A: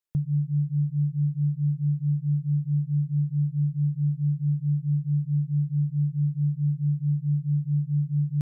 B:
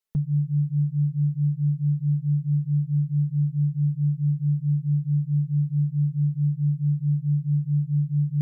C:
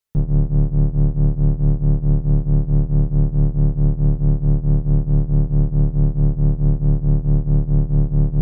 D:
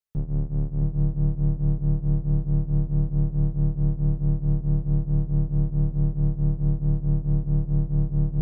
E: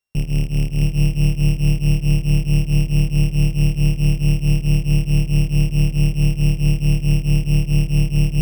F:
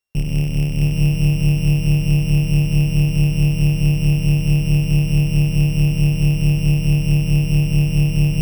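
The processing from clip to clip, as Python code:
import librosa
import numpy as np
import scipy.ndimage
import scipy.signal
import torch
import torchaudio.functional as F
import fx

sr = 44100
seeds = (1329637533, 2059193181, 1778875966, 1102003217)

y1 = x + 0.86 * np.pad(x, (int(4.6 * sr / 1000.0), 0))[:len(x)]
y1 = fx.dynamic_eq(y1, sr, hz=140.0, q=7.0, threshold_db=-35.0, ratio=4.0, max_db=3)
y2 = fx.octave_divider(y1, sr, octaves=2, level_db=3.0)
y2 = y2 * 10.0 ** (3.0 / 20.0)
y3 = y2 + 10.0 ** (-4.5 / 20.0) * np.pad(y2, (int(667 * sr / 1000.0), 0))[:len(y2)]
y3 = y3 * 10.0 ** (-9.0 / 20.0)
y4 = np.r_[np.sort(y3[:len(y3) // 16 * 16].reshape(-1, 16), axis=1).ravel(), y3[len(y3) // 16 * 16:]]
y4 = y4 * 10.0 ** (6.5 / 20.0)
y5 = y4 + 10.0 ** (-3.5 / 20.0) * np.pad(y4, (int(95 * sr / 1000.0), 0))[:len(y4)]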